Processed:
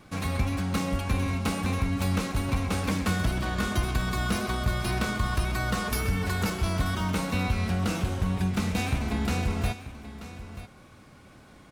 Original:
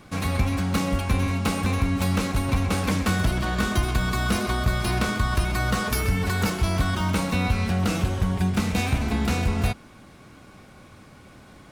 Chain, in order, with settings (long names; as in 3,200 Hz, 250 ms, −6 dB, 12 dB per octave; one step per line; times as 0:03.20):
single-tap delay 935 ms −14 dB
tape wow and flutter 17 cents
level −4 dB